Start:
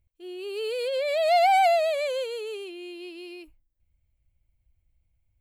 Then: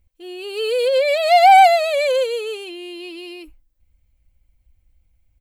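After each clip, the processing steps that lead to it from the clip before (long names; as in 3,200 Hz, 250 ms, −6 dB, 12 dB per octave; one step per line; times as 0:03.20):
comb filter 3.9 ms, depth 48%
level +8 dB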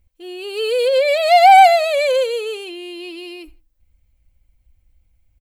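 repeating echo 81 ms, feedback 29%, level −23.5 dB
level +1.5 dB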